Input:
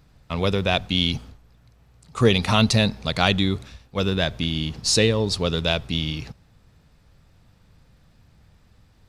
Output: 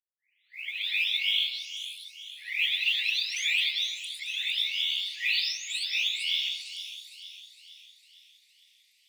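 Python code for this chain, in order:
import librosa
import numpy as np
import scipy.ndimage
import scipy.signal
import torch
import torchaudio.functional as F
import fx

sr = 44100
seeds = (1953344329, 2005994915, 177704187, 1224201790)

y = fx.spec_delay(x, sr, highs='late', ms=875)
y = scipy.signal.sosfilt(scipy.signal.butter(16, 2000.0, 'highpass', fs=sr, output='sos'), y)
y = fx.env_lowpass_down(y, sr, base_hz=2900.0, full_db=-25.5)
y = fx.mod_noise(y, sr, seeds[0], snr_db=28)
y = fx.echo_split(y, sr, split_hz=2900.0, low_ms=128, high_ms=457, feedback_pct=52, wet_db=-10.0)
y = F.gain(torch.from_numpy(y), 4.5).numpy()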